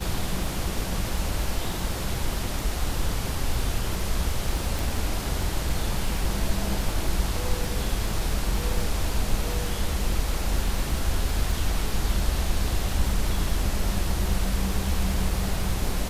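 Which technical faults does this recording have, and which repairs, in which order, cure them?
crackle 23 per s -29 dBFS
4.79 s: pop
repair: de-click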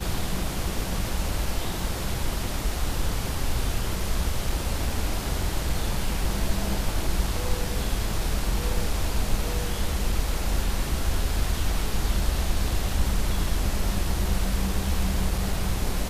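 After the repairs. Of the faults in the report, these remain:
nothing left

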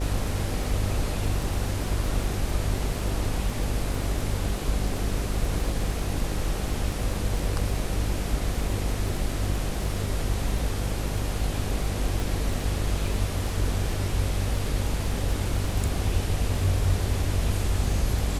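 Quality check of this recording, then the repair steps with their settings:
buzz 50 Hz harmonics 12 -30 dBFS
crackle 28 per s -32 dBFS
12.20 s: pop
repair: de-click; de-hum 50 Hz, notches 12

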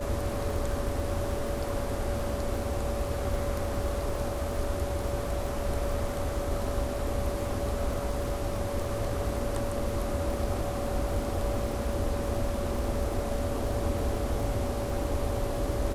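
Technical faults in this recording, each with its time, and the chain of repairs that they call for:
crackle 55 per s -36 dBFS
whine 570 Hz -35 dBFS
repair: de-click; band-stop 570 Hz, Q 30

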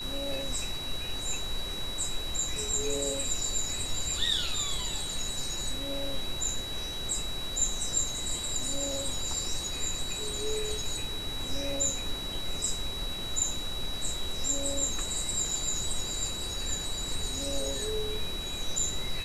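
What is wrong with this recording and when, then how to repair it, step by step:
whine 3.9 kHz -36 dBFS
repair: band-stop 3.9 kHz, Q 30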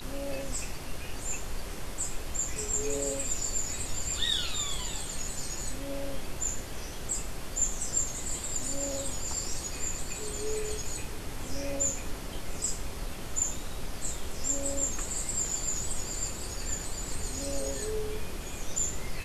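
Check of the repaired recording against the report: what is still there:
nothing left

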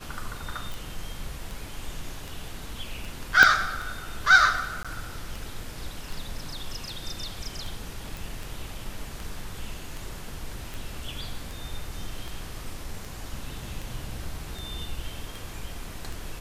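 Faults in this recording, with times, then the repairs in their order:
tick 78 rpm
0.72 s: pop
3.43 s: pop -3 dBFS
4.83–4.85 s: dropout 16 ms
8.17 s: pop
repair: de-click; interpolate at 4.83 s, 16 ms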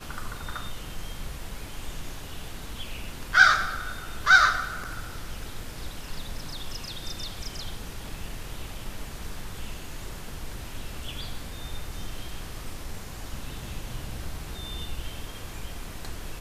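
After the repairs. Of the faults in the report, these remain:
3.43 s: pop

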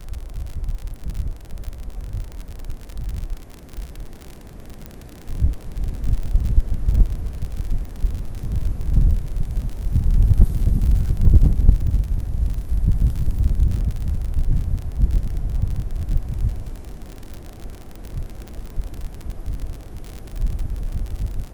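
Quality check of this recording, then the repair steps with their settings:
crackle 52 per s -26 dBFS
4.86 s: pop -18 dBFS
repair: de-click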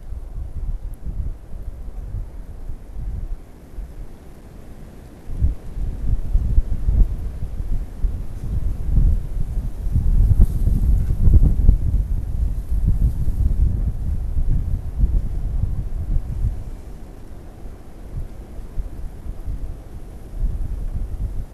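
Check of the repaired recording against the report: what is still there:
nothing left

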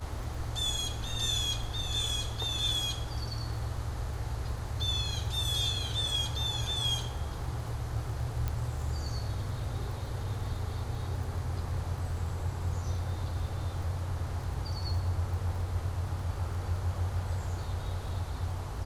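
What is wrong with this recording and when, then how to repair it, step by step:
crackle 22 per s -40 dBFS
8.48 s: pop -19 dBFS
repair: de-click

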